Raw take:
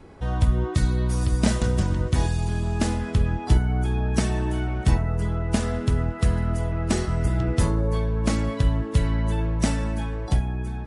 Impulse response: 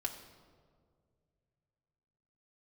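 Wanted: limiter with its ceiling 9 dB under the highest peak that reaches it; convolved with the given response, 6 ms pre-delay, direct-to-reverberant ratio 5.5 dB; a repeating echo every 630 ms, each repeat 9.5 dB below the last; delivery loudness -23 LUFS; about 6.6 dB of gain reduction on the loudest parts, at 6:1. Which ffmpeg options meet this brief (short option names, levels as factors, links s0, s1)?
-filter_complex "[0:a]acompressor=threshold=0.0891:ratio=6,alimiter=limit=0.1:level=0:latency=1,aecho=1:1:630|1260|1890|2520:0.335|0.111|0.0365|0.012,asplit=2[s0][s1];[1:a]atrim=start_sample=2205,adelay=6[s2];[s1][s2]afir=irnorm=-1:irlink=0,volume=0.473[s3];[s0][s3]amix=inputs=2:normalize=0,volume=2"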